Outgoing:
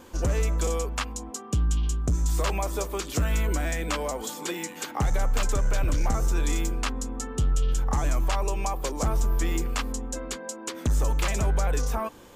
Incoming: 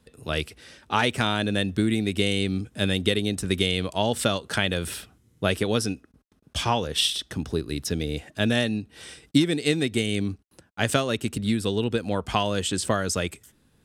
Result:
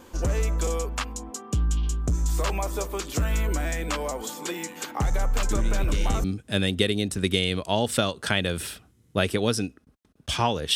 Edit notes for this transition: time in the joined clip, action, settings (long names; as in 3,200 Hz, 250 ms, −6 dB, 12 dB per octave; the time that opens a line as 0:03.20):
outgoing
0:05.47: mix in incoming from 0:01.74 0.77 s −11 dB
0:06.24: continue with incoming from 0:02.51